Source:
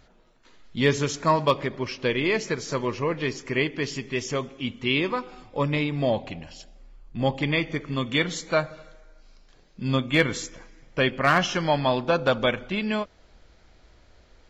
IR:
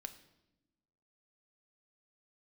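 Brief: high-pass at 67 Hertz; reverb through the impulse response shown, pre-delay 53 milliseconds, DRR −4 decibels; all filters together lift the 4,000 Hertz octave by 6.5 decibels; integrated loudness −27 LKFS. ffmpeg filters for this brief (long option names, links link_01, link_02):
-filter_complex "[0:a]highpass=67,equalizer=frequency=4000:width_type=o:gain=8.5,asplit=2[link_01][link_02];[1:a]atrim=start_sample=2205,adelay=53[link_03];[link_02][link_03]afir=irnorm=-1:irlink=0,volume=8.5dB[link_04];[link_01][link_04]amix=inputs=2:normalize=0,volume=-8.5dB"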